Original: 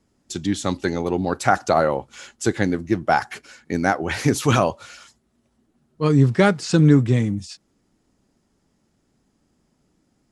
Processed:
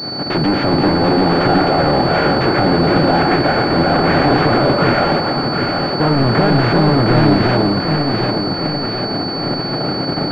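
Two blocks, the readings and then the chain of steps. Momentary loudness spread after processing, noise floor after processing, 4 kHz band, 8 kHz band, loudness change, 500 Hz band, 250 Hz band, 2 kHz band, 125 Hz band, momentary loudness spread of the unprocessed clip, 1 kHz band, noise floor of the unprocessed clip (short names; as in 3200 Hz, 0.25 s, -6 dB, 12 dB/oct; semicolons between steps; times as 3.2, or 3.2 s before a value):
6 LU, -21 dBFS, +16.5 dB, under -10 dB, +6.0 dB, +8.5 dB, +7.5 dB, +8.5 dB, +5.5 dB, 13 LU, +9.0 dB, -68 dBFS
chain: per-bin compression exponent 0.4; gate -29 dBFS, range -15 dB; low shelf 80 Hz -11 dB; in parallel at +3 dB: level quantiser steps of 18 dB; on the sum: limiter -4.5 dBFS, peak gain reduction 12 dB; soft clip -20.5 dBFS, distortion -5 dB; on a send: echo with dull and thin repeats by turns 0.37 s, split 1000 Hz, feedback 76%, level -2 dB; on the sum: pulse-width modulation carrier 4500 Hz; gain +8.5 dB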